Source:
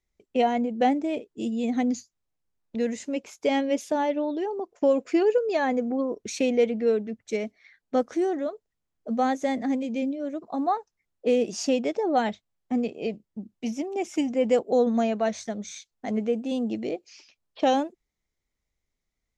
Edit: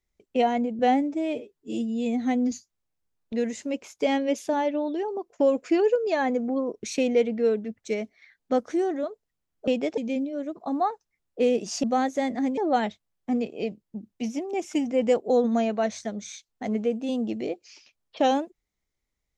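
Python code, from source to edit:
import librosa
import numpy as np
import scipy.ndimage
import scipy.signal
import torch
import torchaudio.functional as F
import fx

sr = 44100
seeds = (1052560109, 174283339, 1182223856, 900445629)

y = fx.edit(x, sr, fx.stretch_span(start_s=0.79, length_s=1.15, factor=1.5),
    fx.swap(start_s=9.1, length_s=0.74, other_s=11.7, other_length_s=0.3), tone=tone)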